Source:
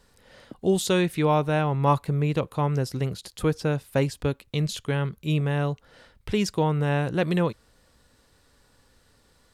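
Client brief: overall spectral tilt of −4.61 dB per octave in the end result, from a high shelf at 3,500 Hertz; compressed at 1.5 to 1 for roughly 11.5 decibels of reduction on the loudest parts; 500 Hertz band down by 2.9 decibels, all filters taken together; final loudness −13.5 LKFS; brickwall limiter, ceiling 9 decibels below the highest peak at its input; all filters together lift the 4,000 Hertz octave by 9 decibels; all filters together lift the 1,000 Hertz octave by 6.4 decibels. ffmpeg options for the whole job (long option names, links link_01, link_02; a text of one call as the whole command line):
ffmpeg -i in.wav -af "equalizer=frequency=500:width_type=o:gain=-6,equalizer=frequency=1000:width_type=o:gain=8.5,highshelf=frequency=3500:gain=8,equalizer=frequency=4000:width_type=o:gain=5.5,acompressor=threshold=-44dB:ratio=1.5,volume=21.5dB,alimiter=limit=-2.5dB:level=0:latency=1" out.wav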